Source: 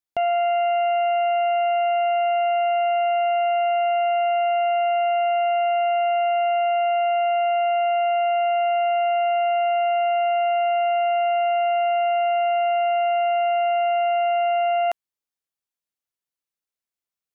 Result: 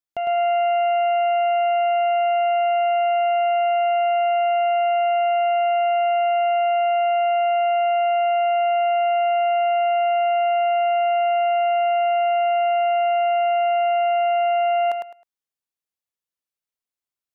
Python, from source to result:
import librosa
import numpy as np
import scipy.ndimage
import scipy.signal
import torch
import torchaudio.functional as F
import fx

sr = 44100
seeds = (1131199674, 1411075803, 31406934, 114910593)

p1 = x + fx.echo_feedback(x, sr, ms=105, feedback_pct=23, wet_db=-4.5, dry=0)
y = F.gain(torch.from_numpy(p1), -3.5).numpy()